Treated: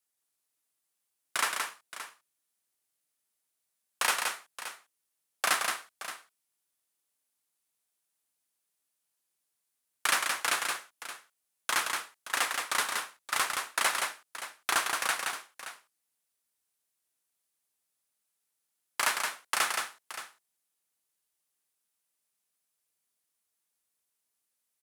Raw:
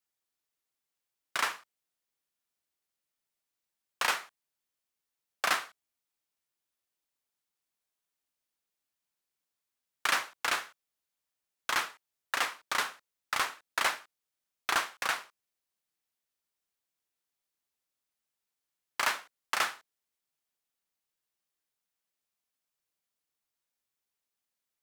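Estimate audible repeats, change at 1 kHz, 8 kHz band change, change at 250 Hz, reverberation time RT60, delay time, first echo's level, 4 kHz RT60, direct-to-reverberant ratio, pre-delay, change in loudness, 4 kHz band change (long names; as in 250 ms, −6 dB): 2, +1.5 dB, +7.0 dB, +1.0 dB, no reverb audible, 172 ms, −4.5 dB, no reverb audible, no reverb audible, no reverb audible, +2.0 dB, +2.5 dB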